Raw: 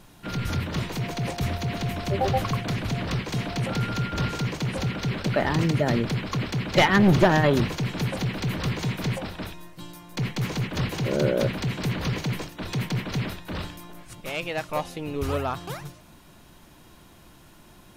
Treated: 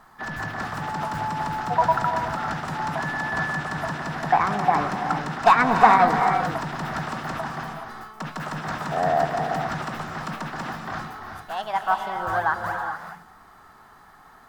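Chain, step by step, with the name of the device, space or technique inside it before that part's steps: high-order bell 890 Hz +16 dB; nightcore (tape speed +24%); gated-style reverb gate 450 ms rising, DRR 4 dB; trim -8.5 dB

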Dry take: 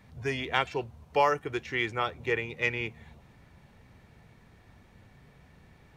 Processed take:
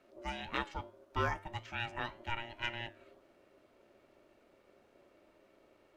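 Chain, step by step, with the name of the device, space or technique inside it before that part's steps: alien voice (ring modulator 470 Hz; flange 1.8 Hz, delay 8.7 ms, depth 1.6 ms, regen +87%); trim -2 dB

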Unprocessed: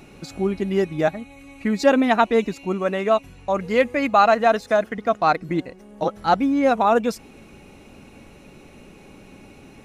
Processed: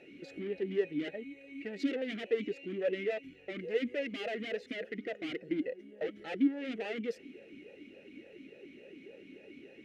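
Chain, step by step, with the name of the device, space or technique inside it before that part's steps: talk box (valve stage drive 27 dB, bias 0.4; talking filter e-i 3.5 Hz); trim +6 dB

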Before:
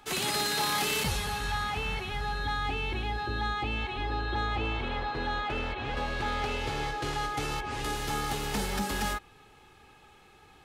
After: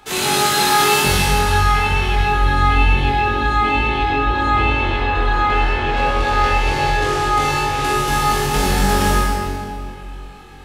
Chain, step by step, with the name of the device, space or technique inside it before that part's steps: tunnel (flutter echo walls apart 3.7 m, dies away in 0.38 s; reverberation RT60 2.3 s, pre-delay 38 ms, DRR -2 dB); trim +7 dB

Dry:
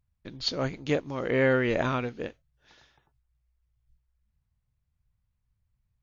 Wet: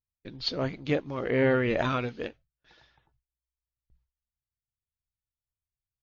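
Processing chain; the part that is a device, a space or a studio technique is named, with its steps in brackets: clip after many re-uploads (low-pass 5.2 kHz 24 dB/octave; coarse spectral quantiser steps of 15 dB); gate with hold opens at -57 dBFS; 1.78–2.27 s: treble shelf 4.5 kHz -> 3.3 kHz +10 dB

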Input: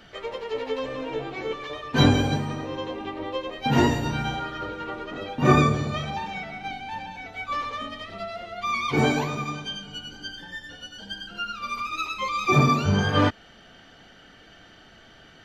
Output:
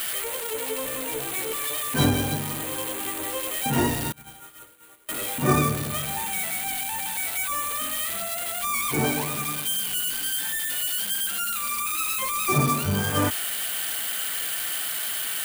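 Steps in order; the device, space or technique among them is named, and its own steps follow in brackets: budget class-D amplifier (dead-time distortion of 0.1 ms; zero-crossing glitches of -11 dBFS); 4.12–5.09 s: gate -20 dBFS, range -28 dB; trim -3.5 dB

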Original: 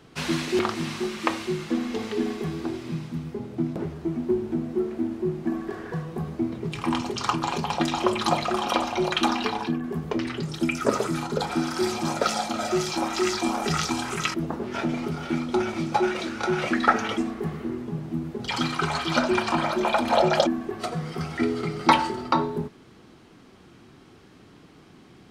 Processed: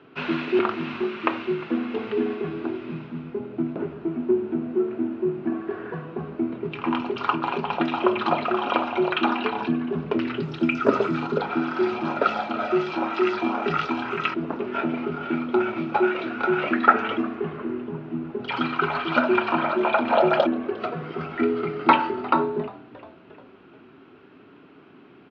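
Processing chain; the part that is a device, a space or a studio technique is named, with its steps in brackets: 9.57–11.39 s: tone controls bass +5 dB, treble +9 dB; frequency-shifting delay pedal into a guitar cabinet (frequency-shifting echo 353 ms, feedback 56%, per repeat -120 Hz, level -20 dB; cabinet simulation 110–3500 Hz, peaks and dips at 270 Hz +8 dB, 400 Hz +9 dB, 630 Hz +6 dB, 970 Hz +5 dB, 1.4 kHz +10 dB, 2.6 kHz +8 dB); trim -4.5 dB

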